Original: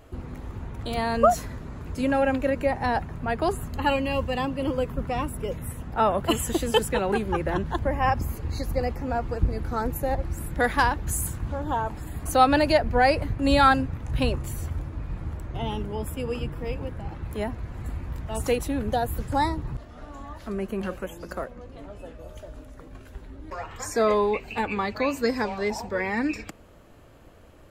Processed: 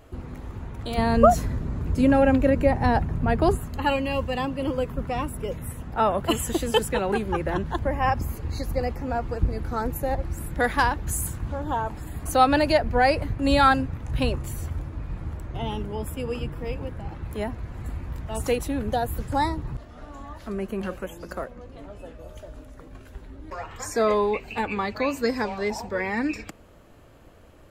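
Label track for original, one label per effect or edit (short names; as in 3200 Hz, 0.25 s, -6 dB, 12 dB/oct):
0.980000	3.570000	low shelf 400 Hz +9.5 dB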